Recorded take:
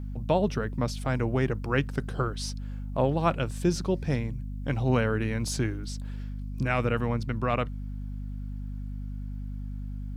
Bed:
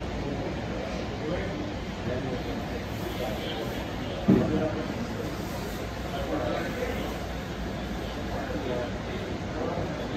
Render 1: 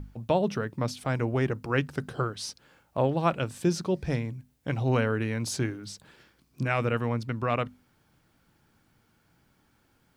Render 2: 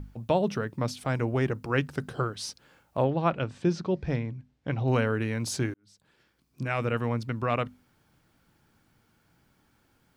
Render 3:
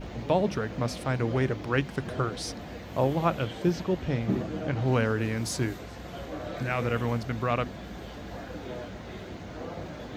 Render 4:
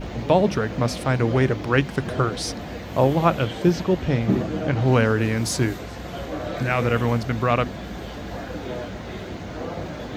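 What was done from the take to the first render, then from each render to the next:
notches 50/100/150/200/250 Hz
3.04–4.88 air absorption 140 m; 5.74–7.05 fade in
add bed -7.5 dB
gain +7 dB

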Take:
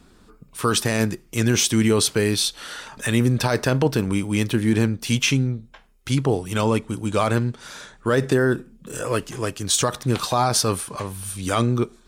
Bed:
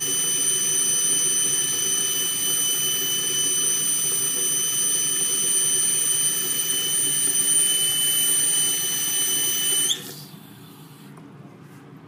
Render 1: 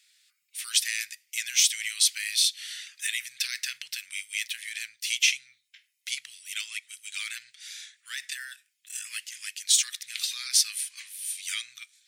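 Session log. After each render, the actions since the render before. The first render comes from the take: elliptic high-pass 2000 Hz, stop band 60 dB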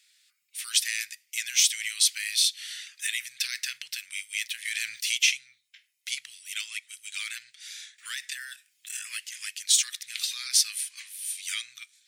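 4.65–5.18 fast leveller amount 50%; 7.98–9.66 three-band squash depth 70%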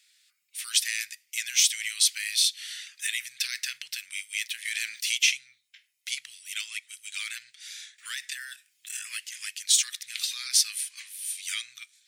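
4.15–5.32 HPF 190 Hz 24 dB/oct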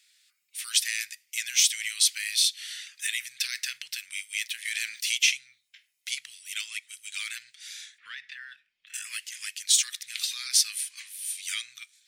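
7.98–8.94 air absorption 330 m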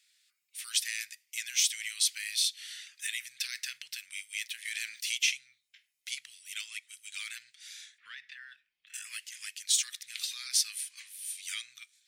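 gain -5.5 dB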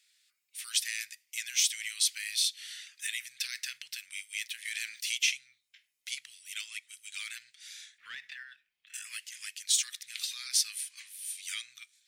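7.99–8.43 sample leveller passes 1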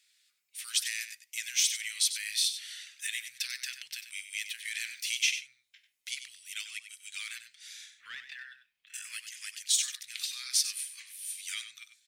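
echo 95 ms -10.5 dB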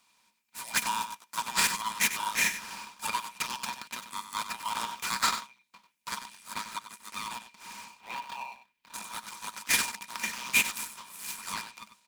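cycle switcher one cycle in 2, inverted; small resonant body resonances 210/950/2400 Hz, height 16 dB, ringing for 60 ms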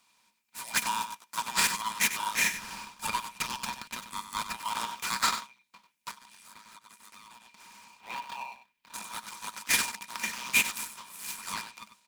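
2.54–4.57 low shelf 140 Hz +10 dB; 6.11–7.95 compressor, threshold -49 dBFS

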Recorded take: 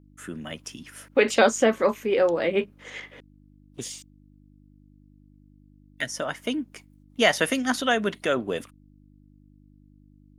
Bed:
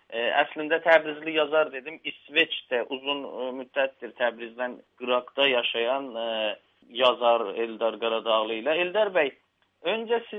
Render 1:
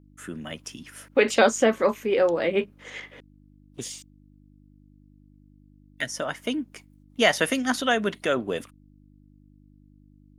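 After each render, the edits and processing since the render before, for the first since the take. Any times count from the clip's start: nothing audible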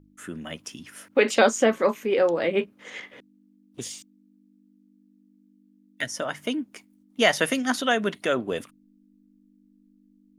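de-hum 50 Hz, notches 3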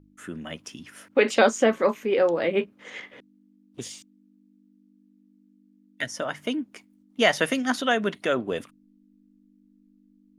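high shelf 7300 Hz -7 dB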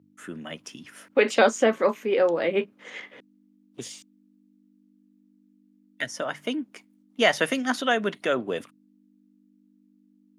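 HPF 100 Hz 24 dB/oct; tone controls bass -3 dB, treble -1 dB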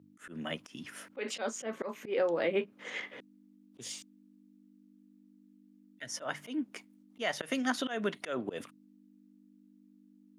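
compressor 3:1, threshold -28 dBFS, peak gain reduction 11.5 dB; auto swell 0.125 s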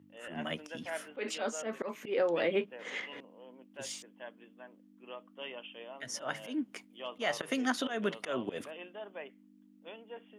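add bed -21.5 dB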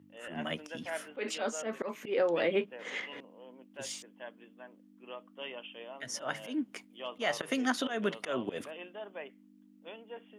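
gain +1 dB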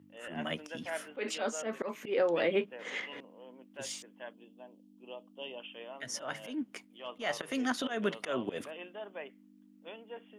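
4.33–5.6 band shelf 1600 Hz -13.5 dB 1.2 oct; 6.21–7.97 transient shaper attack -6 dB, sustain -2 dB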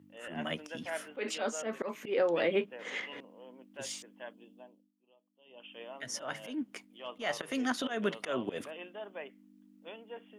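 4.56–5.81 dip -22 dB, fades 0.36 s

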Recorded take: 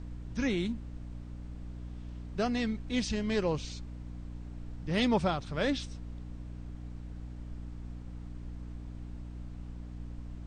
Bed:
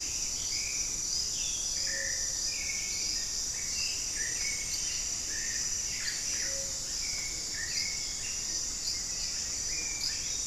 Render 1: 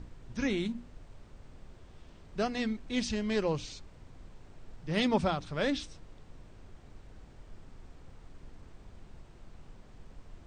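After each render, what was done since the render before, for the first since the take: notches 60/120/180/240/300 Hz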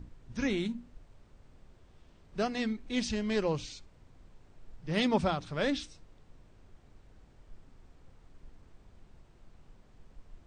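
noise print and reduce 6 dB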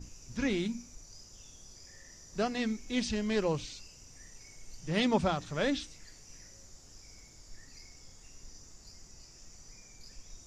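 add bed -22 dB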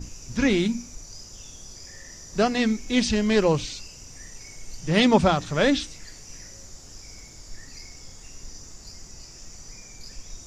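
gain +10 dB

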